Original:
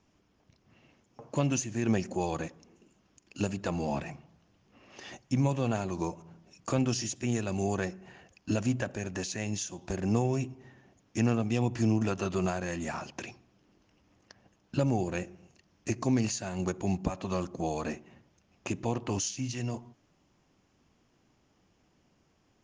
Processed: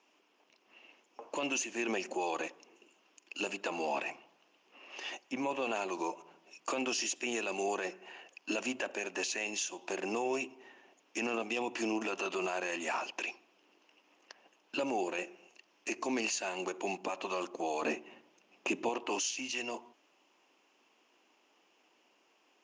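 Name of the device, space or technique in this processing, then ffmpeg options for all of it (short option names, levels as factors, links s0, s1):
laptop speaker: -filter_complex "[0:a]highpass=f=320:w=0.5412,highpass=f=320:w=1.3066,equalizer=f=950:t=o:w=0.58:g=4.5,equalizer=f=2700:t=o:w=0.52:g=10,alimiter=level_in=1.06:limit=0.0631:level=0:latency=1:release=16,volume=0.944,asettb=1/sr,asplit=3[s0][s1][s2];[s0]atrim=end=5.214[s3];[s1]atrim=start=5.21:end=5.62,asetpts=PTS-STARTPTS,afade=t=in:d=0.004:c=qsin,afade=t=out:st=0.406:d=0.004:c=qsin,acrossover=split=2900[s4][s5];[s5]acompressor=threshold=0.00251:ratio=4:attack=1:release=60[s6];[s4][s6]amix=inputs=2:normalize=0[s7];[s2]atrim=start=5.616[s8];[s3][s7]acrossfade=d=0.004:c1=hsin:c2=qsin[s9];[s9][s8]acrossfade=d=0.004:c1=qsin:c2=hsin,asettb=1/sr,asplit=3[s10][s11][s12];[s10]atrim=end=17.824[s13];[s11]atrim=start=17.82:end=18.89,asetpts=PTS-STARTPTS,afade=t=in:d=0.004:c=qsin,afade=t=out:st=1.066:d=0.004:c=qsin,lowshelf=f=310:g=12[s14];[s12]atrim=start=18.886[s15];[s13][s14]acrossfade=d=0.004:c1=hsin:c2=qsin[s16];[s16][s15]acrossfade=d=0.004:c1=qsin:c2=hsin"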